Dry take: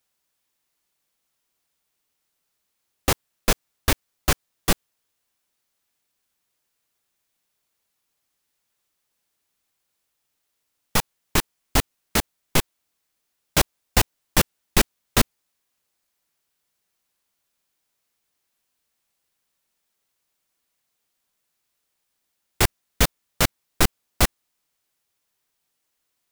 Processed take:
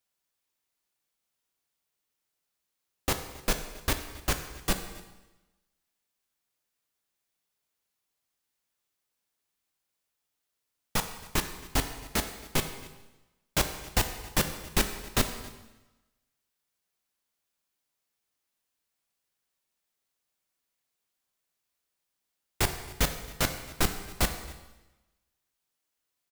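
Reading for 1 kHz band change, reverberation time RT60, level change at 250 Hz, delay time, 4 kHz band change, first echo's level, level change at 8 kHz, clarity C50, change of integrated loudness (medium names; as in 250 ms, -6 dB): -6.5 dB, 1.0 s, -7.0 dB, 271 ms, -6.5 dB, -21.5 dB, -6.5 dB, 9.0 dB, -7.0 dB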